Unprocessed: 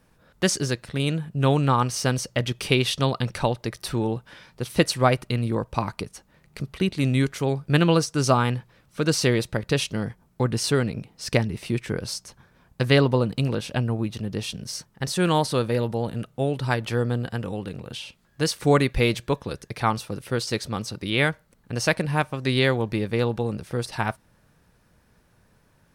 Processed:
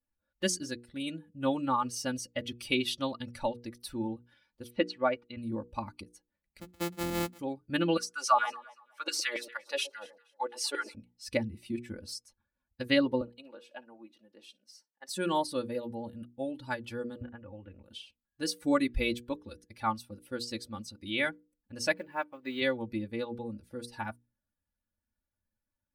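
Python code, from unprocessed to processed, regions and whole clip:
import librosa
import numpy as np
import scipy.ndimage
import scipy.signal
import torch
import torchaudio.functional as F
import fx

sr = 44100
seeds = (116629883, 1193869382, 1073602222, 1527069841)

y = fx.chain(x, sr, fx.lowpass(hz=3100.0, slope=12),
    fx.low_shelf(hz=170.0, db=-10.5), at=(4.7, 5.37))
y = fx.chain(y, sr, fx.sample_sort(block=256),
    fx.highpass(hz=47.0, slope=12), at=(6.61, 7.39))
y = fx.chain(y, sr, fx.filter_lfo_highpass(shape='saw_down', hz=7.2, low_hz=450.0, high_hz=2500.0, q=2.4),
    fx.echo_alternate(ms=118, hz=920.0, feedback_pct=60, wet_db=-10), at=(7.97, 10.95))
y = fx.chain(y, sr, fx.highpass(hz=510.0, slope=12),
    fx.high_shelf(hz=2700.0, db=-10.0),
    fx.room_flutter(wall_m=9.9, rt60_s=0.21), at=(13.21, 15.09))
y = fx.chain(y, sr, fx.lowpass(hz=2600.0, slope=24),
    fx.peak_eq(hz=200.0, db=-5.5, octaves=1.2),
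    fx.band_squash(depth_pct=100), at=(17.21, 17.83))
y = fx.chain(y, sr, fx.block_float(bits=5),
    fx.bass_treble(bass_db=-9, treble_db=-13), at=(21.93, 22.62))
y = fx.bin_expand(y, sr, power=1.5)
y = fx.hum_notches(y, sr, base_hz=60, count=8)
y = y + 0.85 * np.pad(y, (int(3.5 * sr / 1000.0), 0))[:len(y)]
y = y * 10.0 ** (-7.0 / 20.0)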